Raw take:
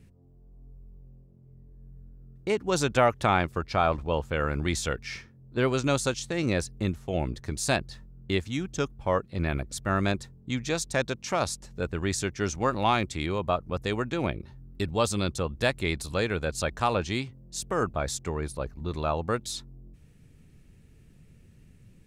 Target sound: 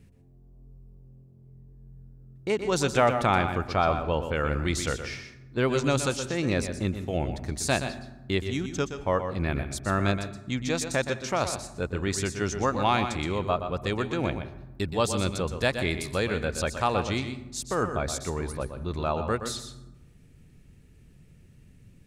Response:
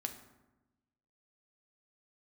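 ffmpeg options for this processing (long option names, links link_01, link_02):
-filter_complex "[0:a]asplit=2[link_01][link_02];[1:a]atrim=start_sample=2205,adelay=122[link_03];[link_02][link_03]afir=irnorm=-1:irlink=0,volume=-7dB[link_04];[link_01][link_04]amix=inputs=2:normalize=0"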